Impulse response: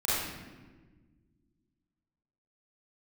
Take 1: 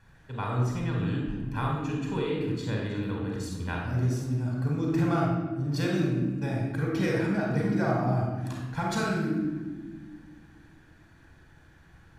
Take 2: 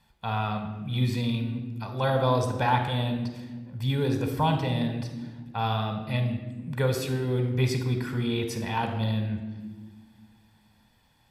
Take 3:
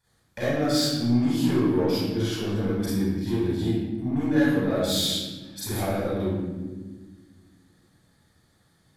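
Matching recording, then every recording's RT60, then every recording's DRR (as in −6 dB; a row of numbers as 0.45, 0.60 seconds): 3; 1.4, 1.5, 1.4 seconds; −1.5, 5.5, −11.0 decibels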